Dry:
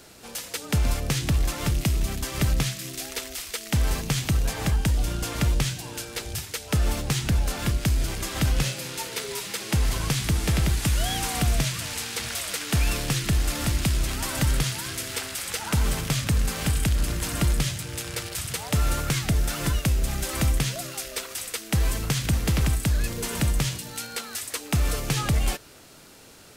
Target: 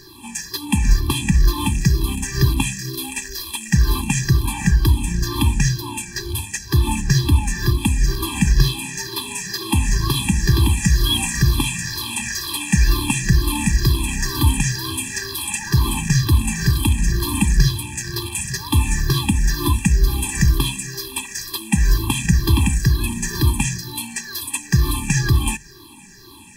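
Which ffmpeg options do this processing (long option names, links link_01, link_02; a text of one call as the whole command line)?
ffmpeg -i in.wav -af "afftfilt=real='re*pow(10,18/40*sin(2*PI*(0.57*log(max(b,1)*sr/1024/100)/log(2)-(-2.1)*(pts-256)/sr)))':imag='im*pow(10,18/40*sin(2*PI*(0.57*log(max(b,1)*sr/1024/100)/log(2)-(-2.1)*(pts-256)/sr)))':win_size=1024:overlap=0.75,bandreject=frequency=50:width_type=h:width=6,bandreject=frequency=100:width_type=h:width=6,bandreject=frequency=150:width_type=h:width=6,afftfilt=real='re*eq(mod(floor(b*sr/1024/390),2),0)':imag='im*eq(mod(floor(b*sr/1024/390),2),0)':win_size=1024:overlap=0.75,volume=5dB" out.wav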